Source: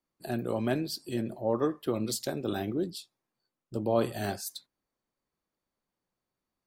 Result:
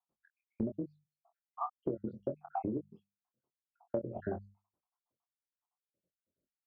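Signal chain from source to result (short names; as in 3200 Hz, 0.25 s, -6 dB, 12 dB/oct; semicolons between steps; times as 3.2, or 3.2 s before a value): random spectral dropouts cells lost 81%; LPF 1100 Hz 24 dB/oct; notches 50/100/150/200 Hz; gate -58 dBFS, range -7 dB; HPF 57 Hz; compressor 12:1, threshold -41 dBFS, peak gain reduction 19 dB; doubler 23 ms -7 dB; gain +8.5 dB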